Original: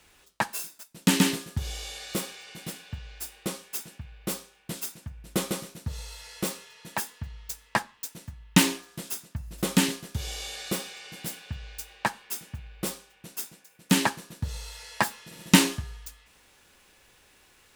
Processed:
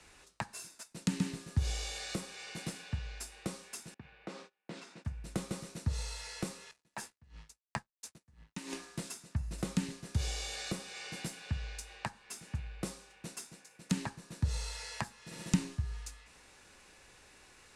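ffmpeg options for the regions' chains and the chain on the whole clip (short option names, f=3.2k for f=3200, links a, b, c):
-filter_complex "[0:a]asettb=1/sr,asplit=3[a][b][c];[a]atrim=end=3.944[d];[b]atrim=start=3.94:end=5.05,asetpts=PTS-STARTPTS,afade=t=in:d=0.004:c=qsin,afade=t=out:st=1.106:d=0.004:c=qsin,agate=range=-23dB:threshold=-54dB:ratio=16:release=100:detection=peak,acompressor=threshold=-37dB:ratio=6:attack=3.2:release=140:knee=1:detection=peak,highpass=190,lowpass=3.4k[e];[c]atrim=start=5.046[f];[d][e]acrossfade=d=0.004:c1=hsin:c2=qsin[g];[g][f]acrossfade=d=0.004:c1=qsin:c2=hsin,asettb=1/sr,asplit=3[h][i][j];[h]atrim=end=6.714[k];[i]atrim=start=6.71:end=8.73,asetpts=PTS-STARTPTS,afade=t=in:d=0.004:c=qsin,afade=t=out:st=2.016:d=0.004:c=qsin,aeval=exprs='sgn(val(0))*max(abs(val(0))-0.00376,0)':c=same,asplit=2[l][m];[m]adelay=14,volume=-13dB[n];[l][n]amix=inputs=2:normalize=0,atrim=end_sample=89082,aeval=exprs='val(0)*pow(10,-27*(0.5-0.5*cos(2*PI*2.9*n/s))/20)':c=same[o];[j]atrim=start=8.726[p];[k][o]acrossfade=d=0.004:c1=hsin:c2=qsin[q];[q][p]acrossfade=d=0.004:c1=qsin:c2=hsin,equalizer=f=3.2k:w=5.1:g=-6,acrossover=split=140[r][s];[s]acompressor=threshold=-38dB:ratio=10[t];[r][t]amix=inputs=2:normalize=0,lowpass=f=10k:w=0.5412,lowpass=f=10k:w=1.3066,volume=1dB"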